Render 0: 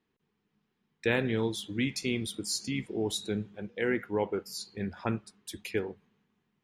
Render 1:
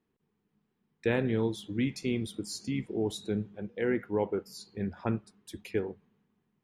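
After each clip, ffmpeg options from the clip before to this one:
ffmpeg -i in.wav -af "tiltshelf=frequency=1300:gain=4.5,volume=-3dB" out.wav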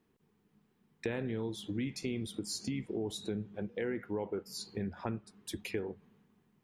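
ffmpeg -i in.wav -filter_complex "[0:a]asplit=2[link_01][link_02];[link_02]alimiter=level_in=1.5dB:limit=-24dB:level=0:latency=1:release=26,volume=-1.5dB,volume=-1dB[link_03];[link_01][link_03]amix=inputs=2:normalize=0,acompressor=threshold=-36dB:ratio=3" out.wav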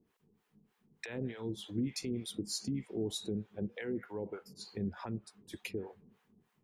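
ffmpeg -i in.wav -filter_complex "[0:a]alimiter=level_in=4dB:limit=-24dB:level=0:latency=1:release=186,volume=-4dB,acrossover=split=590[link_01][link_02];[link_01]aeval=exprs='val(0)*(1-1/2+1/2*cos(2*PI*3.3*n/s))':channel_layout=same[link_03];[link_02]aeval=exprs='val(0)*(1-1/2-1/2*cos(2*PI*3.3*n/s))':channel_layout=same[link_04];[link_03][link_04]amix=inputs=2:normalize=0,volume=4dB" out.wav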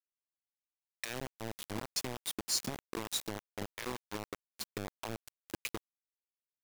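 ffmpeg -i in.wav -filter_complex "[0:a]acrossover=split=3800[link_01][link_02];[link_01]acompressor=threshold=-44dB:ratio=20[link_03];[link_03][link_02]amix=inputs=2:normalize=0,acrusher=bits=6:mix=0:aa=0.000001,volume=6.5dB" out.wav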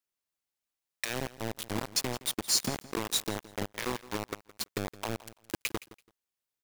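ffmpeg -i in.wav -af "aecho=1:1:167|334:0.126|0.0239,volume=6dB" out.wav

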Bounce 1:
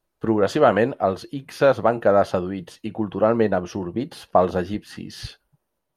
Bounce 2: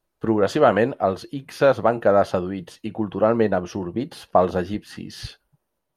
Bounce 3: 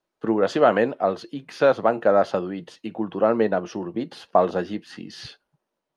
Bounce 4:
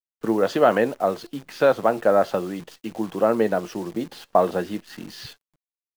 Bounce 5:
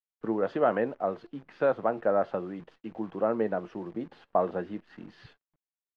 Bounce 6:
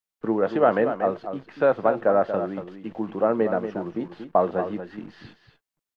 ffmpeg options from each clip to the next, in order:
ffmpeg -i in.wav -af anull out.wav
ffmpeg -i in.wav -filter_complex "[0:a]acrossover=split=150 7700:gain=0.141 1 0.141[link_01][link_02][link_03];[link_01][link_02][link_03]amix=inputs=3:normalize=0,volume=-1dB" out.wav
ffmpeg -i in.wav -af "acrusher=bits=8:dc=4:mix=0:aa=0.000001" out.wav
ffmpeg -i in.wav -af "lowpass=2000,volume=-7.5dB" out.wav
ffmpeg -i in.wav -af "aecho=1:1:234:0.335,volume=5.5dB" out.wav

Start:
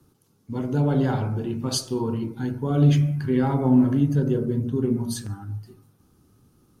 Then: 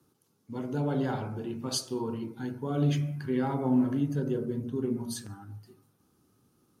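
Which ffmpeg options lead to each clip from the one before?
ffmpeg -i in.wav -af "highpass=frequency=210:poles=1,volume=-5dB" out.wav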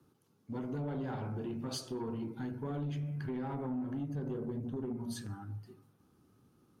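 ffmpeg -i in.wav -af "bass=frequency=250:gain=2,treble=frequency=4000:gain=-7,acompressor=threshold=-33dB:ratio=4,asoftclip=type=tanh:threshold=-31dB" out.wav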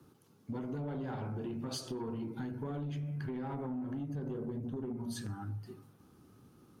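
ffmpeg -i in.wav -af "acompressor=threshold=-44dB:ratio=4,volume=6.5dB" out.wav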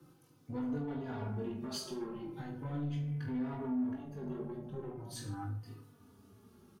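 ffmpeg -i in.wav -filter_complex "[0:a]asoftclip=type=tanh:threshold=-32.5dB,asplit=2[link_01][link_02];[link_02]aecho=0:1:20|44|72.8|107.4|148.8:0.631|0.398|0.251|0.158|0.1[link_03];[link_01][link_03]amix=inputs=2:normalize=0,asplit=2[link_04][link_05];[link_05]adelay=3.4,afreqshift=-0.4[link_06];[link_04][link_06]amix=inputs=2:normalize=1,volume=1.5dB" out.wav

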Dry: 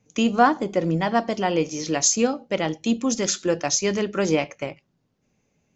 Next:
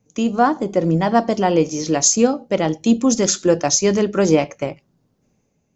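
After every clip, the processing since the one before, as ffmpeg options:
ffmpeg -i in.wav -af "equalizer=frequency=2500:width=0.68:gain=-7,dynaudnorm=framelen=100:gausssize=11:maxgain=6.5dB,volume=1.5dB" out.wav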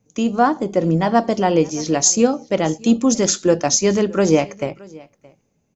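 ffmpeg -i in.wav -af "aecho=1:1:621:0.0668" out.wav

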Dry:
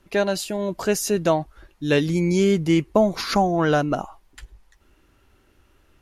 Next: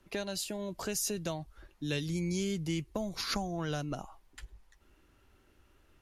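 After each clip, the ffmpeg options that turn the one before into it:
ffmpeg -i in.wav -filter_complex "[0:a]acrossover=split=140|3000[link_01][link_02][link_03];[link_02]acompressor=threshold=-31dB:ratio=4[link_04];[link_01][link_04][link_03]amix=inputs=3:normalize=0,volume=-6dB" out.wav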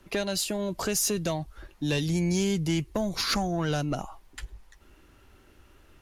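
ffmpeg -i in.wav -af "asoftclip=type=tanh:threshold=-26.5dB,volume=8.5dB" out.wav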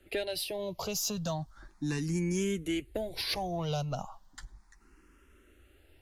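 ffmpeg -i in.wav -filter_complex "[0:a]asplit=2[link_01][link_02];[link_02]afreqshift=0.35[link_03];[link_01][link_03]amix=inputs=2:normalize=1,volume=-2.5dB" out.wav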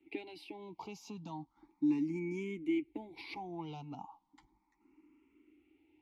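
ffmpeg -i in.wav -filter_complex "[0:a]asplit=3[link_01][link_02][link_03];[link_01]bandpass=frequency=300:width_type=q:width=8,volume=0dB[link_04];[link_02]bandpass=frequency=870:width_type=q:width=8,volume=-6dB[link_05];[link_03]bandpass=frequency=2240:width_type=q:width=8,volume=-9dB[link_06];[link_04][link_05][link_06]amix=inputs=3:normalize=0,volume=6dB" out.wav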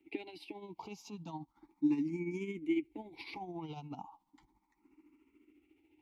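ffmpeg -i in.wav -af "tremolo=f=14:d=0.54,volume=2.5dB" out.wav

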